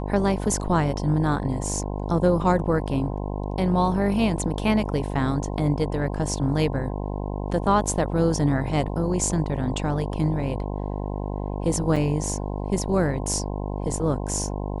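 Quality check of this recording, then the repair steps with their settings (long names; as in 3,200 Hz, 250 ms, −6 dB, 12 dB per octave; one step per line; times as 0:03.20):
mains buzz 50 Hz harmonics 21 −29 dBFS
0:11.96: drop-out 5 ms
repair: hum removal 50 Hz, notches 21
repair the gap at 0:11.96, 5 ms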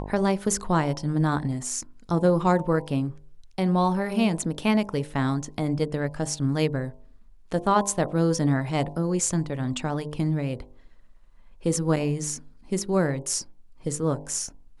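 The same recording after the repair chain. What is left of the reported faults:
none of them is left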